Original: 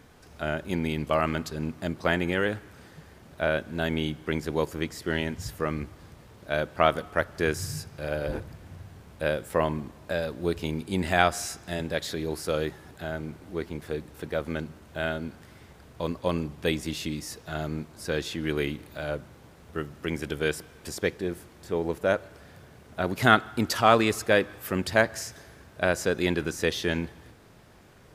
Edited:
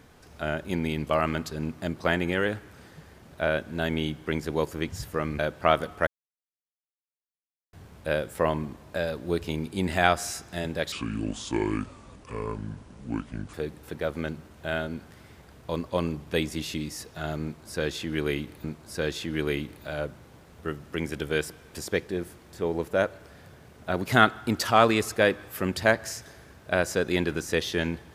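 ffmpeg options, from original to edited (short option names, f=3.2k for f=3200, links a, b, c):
-filter_complex "[0:a]asplit=8[a][b][c][d][e][f][g][h];[a]atrim=end=4.882[i];[b]atrim=start=5.338:end=5.852[j];[c]atrim=start=6.538:end=7.22,asetpts=PTS-STARTPTS,afade=t=out:st=0.678:d=0.004:c=hsin[k];[d]atrim=start=7.22:end=8.88,asetpts=PTS-STARTPTS,volume=0[l];[e]atrim=start=8.88:end=12.074,asetpts=PTS-STARTPTS,afade=t=in:d=0.004:c=hsin[m];[f]atrim=start=12.07:end=13.85,asetpts=PTS-STARTPTS,asetrate=29988,aresample=44100,atrim=end_sample=115438,asetpts=PTS-STARTPTS[n];[g]atrim=start=13.846:end=18.952[o];[h]atrim=start=17.738[p];[i][j]acrossfade=d=0.004:c1=hsin:c2=hsin[q];[k][l][m]concat=n=3:v=0:a=1[r];[q][r]acrossfade=d=0.004:c1=hsin:c2=hsin[s];[s][n]acrossfade=d=0.004:c1=hsin:c2=hsin[t];[t][o]acrossfade=d=0.004:c1=hsin:c2=hsin[u];[u][p]acrossfade=d=0.004:c1=hsin:c2=hsin"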